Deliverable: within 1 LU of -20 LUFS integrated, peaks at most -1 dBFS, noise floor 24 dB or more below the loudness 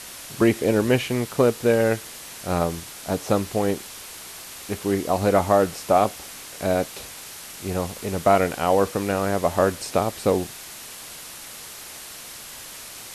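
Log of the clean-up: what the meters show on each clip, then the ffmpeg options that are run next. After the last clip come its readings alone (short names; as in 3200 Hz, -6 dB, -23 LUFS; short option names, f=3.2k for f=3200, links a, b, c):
noise floor -40 dBFS; noise floor target -47 dBFS; loudness -23.0 LUFS; peak -4.5 dBFS; loudness target -20.0 LUFS
-> -af "afftdn=nr=7:nf=-40"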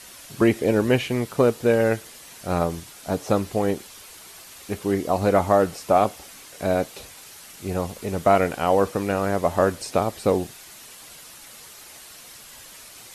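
noise floor -45 dBFS; noise floor target -47 dBFS
-> -af "afftdn=nr=6:nf=-45"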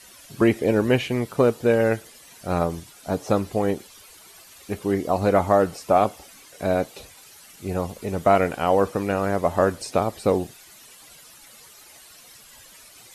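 noise floor -49 dBFS; loudness -23.0 LUFS; peak -4.5 dBFS; loudness target -20.0 LUFS
-> -af "volume=3dB"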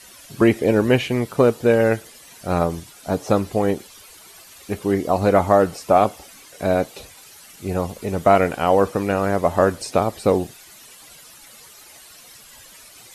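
loudness -20.0 LUFS; peak -1.5 dBFS; noise floor -46 dBFS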